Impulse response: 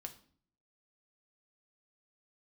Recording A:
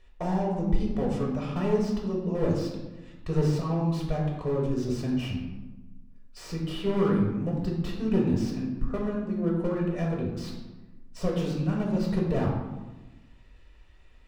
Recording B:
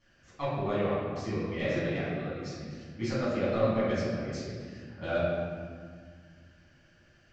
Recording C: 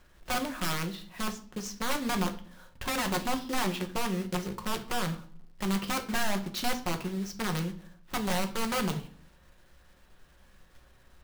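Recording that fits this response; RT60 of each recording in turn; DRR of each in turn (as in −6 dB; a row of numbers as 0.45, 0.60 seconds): C; 1.1, 1.9, 0.50 seconds; −2.5, −11.0, 4.5 decibels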